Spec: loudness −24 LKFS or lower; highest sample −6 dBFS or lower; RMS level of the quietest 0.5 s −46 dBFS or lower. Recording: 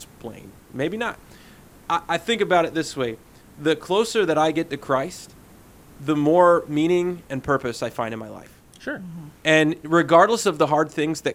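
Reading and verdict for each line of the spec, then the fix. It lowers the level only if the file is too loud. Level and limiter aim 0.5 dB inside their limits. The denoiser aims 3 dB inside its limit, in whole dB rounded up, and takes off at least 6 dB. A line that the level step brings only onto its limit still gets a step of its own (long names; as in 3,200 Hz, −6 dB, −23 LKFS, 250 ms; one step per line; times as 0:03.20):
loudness −21.5 LKFS: out of spec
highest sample −3.0 dBFS: out of spec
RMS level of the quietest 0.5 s −48 dBFS: in spec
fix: level −3 dB
brickwall limiter −6.5 dBFS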